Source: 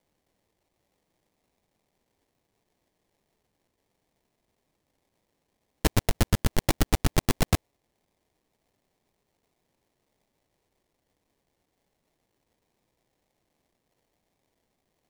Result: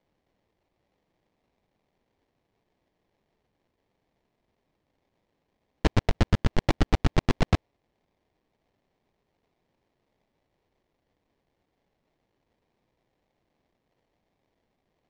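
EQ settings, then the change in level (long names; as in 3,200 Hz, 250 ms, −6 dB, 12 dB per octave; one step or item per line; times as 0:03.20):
high-frequency loss of the air 160 metres
+1.5 dB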